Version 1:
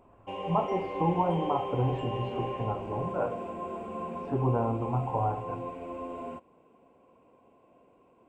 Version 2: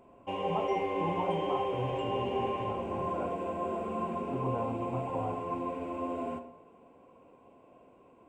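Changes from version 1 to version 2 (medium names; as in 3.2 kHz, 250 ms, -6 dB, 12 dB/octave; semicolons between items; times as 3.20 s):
speech -8.5 dB; background: send on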